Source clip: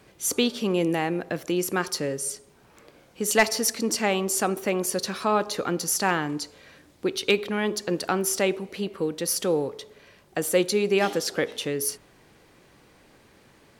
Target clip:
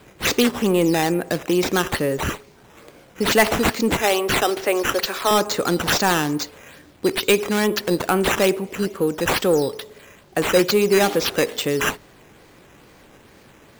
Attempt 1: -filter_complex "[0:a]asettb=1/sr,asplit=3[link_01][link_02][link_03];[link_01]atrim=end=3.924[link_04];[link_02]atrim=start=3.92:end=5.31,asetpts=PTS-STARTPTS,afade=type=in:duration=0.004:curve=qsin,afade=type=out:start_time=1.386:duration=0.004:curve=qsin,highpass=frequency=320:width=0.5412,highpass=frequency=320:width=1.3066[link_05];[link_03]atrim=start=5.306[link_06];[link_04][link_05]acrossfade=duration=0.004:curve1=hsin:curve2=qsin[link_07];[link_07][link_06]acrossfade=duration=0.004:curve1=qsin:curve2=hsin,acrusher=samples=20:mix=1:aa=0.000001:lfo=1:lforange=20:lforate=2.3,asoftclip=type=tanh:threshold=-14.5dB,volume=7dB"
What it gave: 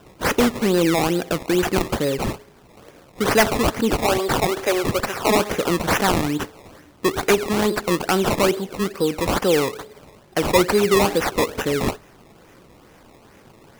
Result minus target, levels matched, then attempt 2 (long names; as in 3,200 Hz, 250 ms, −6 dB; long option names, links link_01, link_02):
sample-and-hold swept by an LFO: distortion +6 dB
-filter_complex "[0:a]asettb=1/sr,asplit=3[link_01][link_02][link_03];[link_01]atrim=end=3.924[link_04];[link_02]atrim=start=3.92:end=5.31,asetpts=PTS-STARTPTS,afade=type=in:duration=0.004:curve=qsin,afade=type=out:start_time=1.386:duration=0.004:curve=qsin,highpass=frequency=320:width=0.5412,highpass=frequency=320:width=1.3066[link_05];[link_03]atrim=start=5.306[link_06];[link_04][link_05]acrossfade=duration=0.004:curve1=hsin:curve2=qsin[link_07];[link_07][link_06]acrossfade=duration=0.004:curve1=qsin:curve2=hsin,acrusher=samples=7:mix=1:aa=0.000001:lfo=1:lforange=7:lforate=2.3,asoftclip=type=tanh:threshold=-14.5dB,volume=7dB"